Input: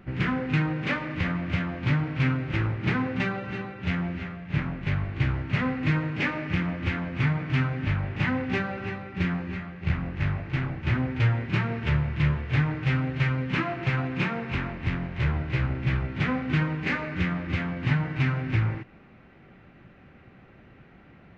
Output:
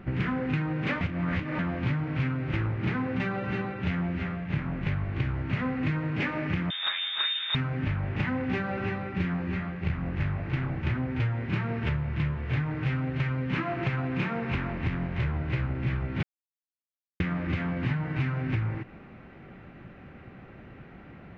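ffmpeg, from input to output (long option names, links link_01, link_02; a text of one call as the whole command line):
ffmpeg -i in.wav -filter_complex "[0:a]asettb=1/sr,asplit=3[link_01][link_02][link_03];[link_01]atrim=end=6.704[link_04];[link_02]atrim=start=6.7:end=7.55,asetpts=PTS-STARTPTS,afade=type=in:duration=0.004:curve=qsin,afade=type=out:start_time=0.846:duration=0.004:curve=qsin,lowpass=frequency=3200:width_type=q:width=0.5098,lowpass=frequency=3200:width_type=q:width=0.6013,lowpass=frequency=3200:width_type=q:width=0.9,lowpass=frequency=3200:width_type=q:width=2.563,afreqshift=-3800[link_05];[link_03]atrim=start=7.546[link_06];[link_04][link_05]acrossfade=duration=0.004:curve1=hsin:curve2=qsin[link_07];[link_07][link_06]acrossfade=duration=0.004:curve1=qsin:curve2=hsin,asplit=5[link_08][link_09][link_10][link_11][link_12];[link_08]atrim=end=1.012[link_13];[link_09]atrim=start=1.008:end=1.592,asetpts=PTS-STARTPTS,areverse[link_14];[link_10]atrim=start=1.588:end=16.23,asetpts=PTS-STARTPTS,afade=type=out:start_time=14.638:duration=0.004:curve=hsin[link_15];[link_11]atrim=start=16.23:end=17.2,asetpts=PTS-STARTPTS,volume=0[link_16];[link_12]atrim=start=17.2,asetpts=PTS-STARTPTS,afade=type=in:duration=0.004:curve=hsin[link_17];[link_13][link_14]acrossfade=duration=0.004:curve1=hsin:curve2=hsin[link_18];[link_15][link_16][link_17]concat=n=3:v=0:a=1[link_19];[link_18][link_19]acrossfade=duration=0.004:curve1=hsin:curve2=hsin,highshelf=frequency=3400:gain=-7,acompressor=threshold=-31dB:ratio=5,volume=5dB" out.wav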